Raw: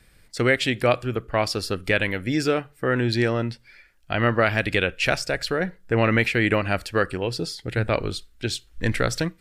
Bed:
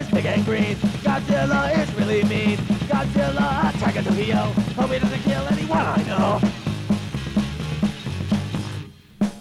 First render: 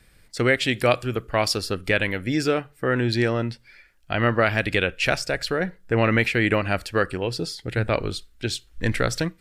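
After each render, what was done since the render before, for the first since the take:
0:00.69–0:01.58: high-shelf EQ 3,500 Hz +6.5 dB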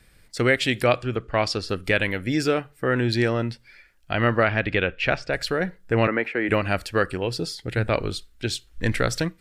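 0:00.84–0:01.69: high-frequency loss of the air 80 metres
0:04.43–0:05.33: low-pass filter 3,000 Hz
0:06.07–0:06.49: three-way crossover with the lows and the highs turned down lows −23 dB, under 240 Hz, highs −22 dB, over 2,100 Hz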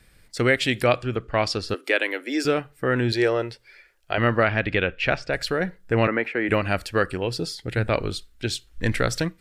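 0:01.74–0:02.45: Butterworth high-pass 280 Hz 48 dB per octave
0:03.12–0:04.18: low shelf with overshoot 320 Hz −7 dB, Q 3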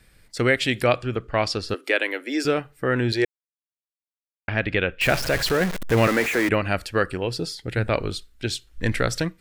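0:03.25–0:04.48: silence
0:05.01–0:06.49: converter with a step at zero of −23 dBFS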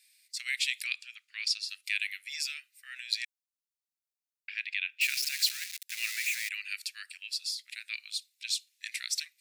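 Butterworth high-pass 2,400 Hz 36 dB per octave
parametric band 3,100 Hz −8.5 dB 0.28 octaves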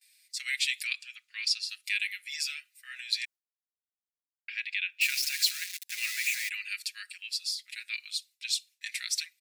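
noise gate with hold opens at −56 dBFS
comb filter 5.5 ms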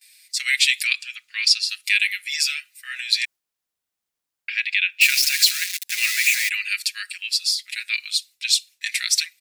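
level +11.5 dB
brickwall limiter −3 dBFS, peak gain reduction 2.5 dB

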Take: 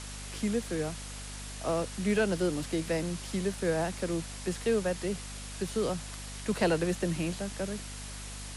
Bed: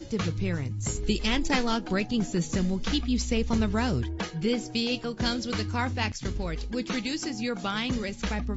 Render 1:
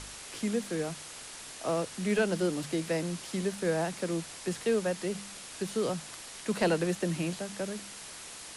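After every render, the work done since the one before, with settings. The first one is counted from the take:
hum removal 50 Hz, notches 5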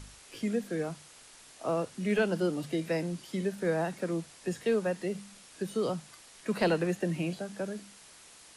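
noise reduction from a noise print 9 dB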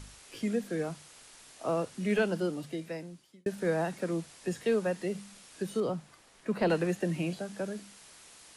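0:02.16–0:03.46: fade out
0:05.80–0:06.70: high-shelf EQ 2,400 Hz −10 dB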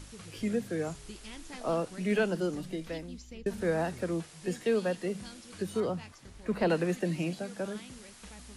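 mix in bed −20 dB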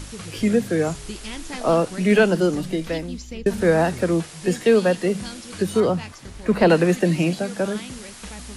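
level +12 dB

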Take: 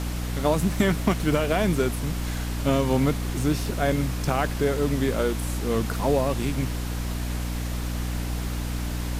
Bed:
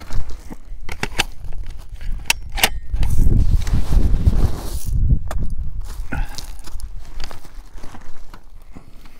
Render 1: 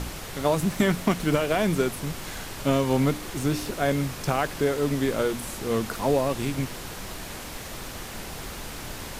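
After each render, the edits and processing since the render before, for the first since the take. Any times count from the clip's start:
hum removal 60 Hz, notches 5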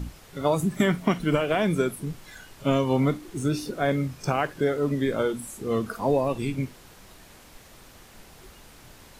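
noise reduction from a noise print 13 dB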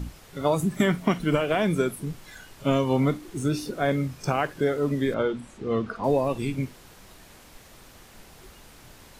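0:05.14–0:06.04: low-pass filter 3,800 Hz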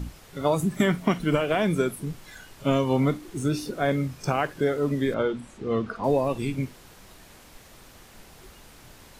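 no processing that can be heard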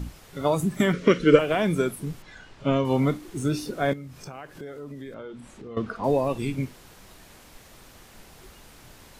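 0:00.93–0:01.39: drawn EQ curve 210 Hz 0 dB, 520 Hz +15 dB, 740 Hz −18 dB, 1,300 Hz +6 dB, 6,400 Hz +4 dB, 14,000 Hz −20 dB
0:02.22–0:02.85: high-frequency loss of the air 110 metres
0:03.93–0:05.77: downward compressor 3 to 1, threshold −40 dBFS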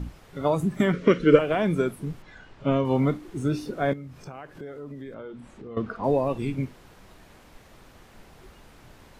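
high-shelf EQ 3,700 Hz −10.5 dB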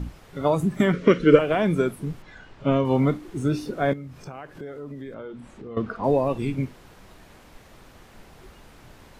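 level +2 dB
brickwall limiter −2 dBFS, peak gain reduction 1 dB

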